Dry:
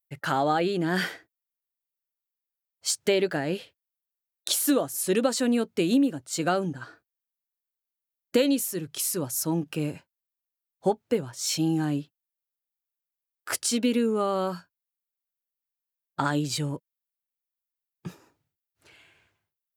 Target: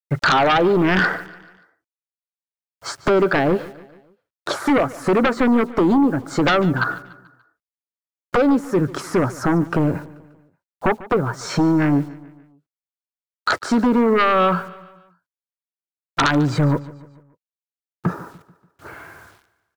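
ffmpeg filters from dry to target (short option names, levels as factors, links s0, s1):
-filter_complex "[0:a]acrossover=split=3900[s0][s1];[s1]acompressor=threshold=0.0251:ratio=4:attack=1:release=60[s2];[s0][s2]amix=inputs=2:normalize=0,lowpass=5300,highshelf=f=2000:t=q:w=3:g=-13,acompressor=threshold=0.0224:ratio=2.5,acrusher=bits=11:mix=0:aa=0.000001,aeval=exprs='0.133*sin(PI/2*3.55*val(0)/0.133)':c=same,aecho=1:1:145|290|435|580:0.112|0.0561|0.0281|0.014,volume=1.88"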